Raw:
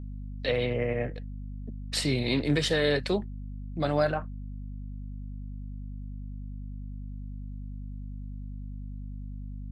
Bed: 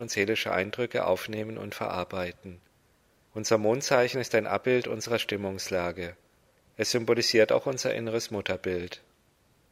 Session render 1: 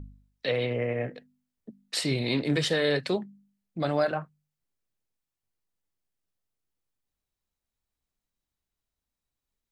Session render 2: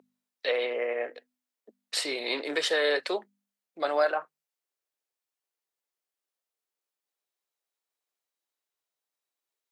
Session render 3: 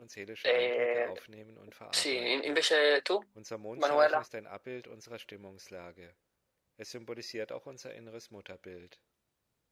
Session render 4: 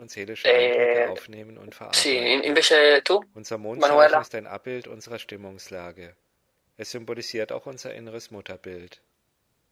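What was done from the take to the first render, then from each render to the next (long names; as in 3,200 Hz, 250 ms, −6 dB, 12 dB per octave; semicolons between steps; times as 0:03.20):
hum removal 50 Hz, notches 5
dynamic equaliser 1,200 Hz, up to +4 dB, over −39 dBFS, Q 1; high-pass filter 390 Hz 24 dB per octave
mix in bed −18 dB
level +10 dB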